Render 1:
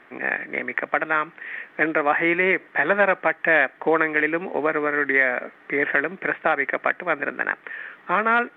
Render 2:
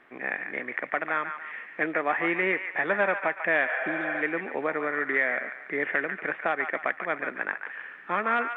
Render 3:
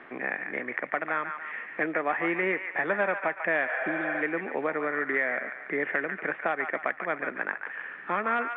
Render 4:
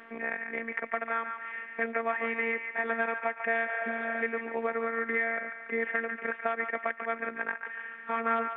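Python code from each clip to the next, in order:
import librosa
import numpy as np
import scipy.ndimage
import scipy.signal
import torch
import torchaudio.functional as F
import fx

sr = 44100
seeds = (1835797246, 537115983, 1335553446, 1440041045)

y1 = fx.spec_repair(x, sr, seeds[0], start_s=3.71, length_s=0.48, low_hz=420.0, high_hz=3400.0, source='before')
y1 = fx.echo_wet_bandpass(y1, sr, ms=143, feedback_pct=41, hz=1600.0, wet_db=-7.0)
y1 = y1 * 10.0 ** (-6.5 / 20.0)
y2 = fx.air_absorb(y1, sr, metres=230.0)
y2 = fx.band_squash(y2, sr, depth_pct=40)
y3 = fx.robotise(y2, sr, hz=228.0)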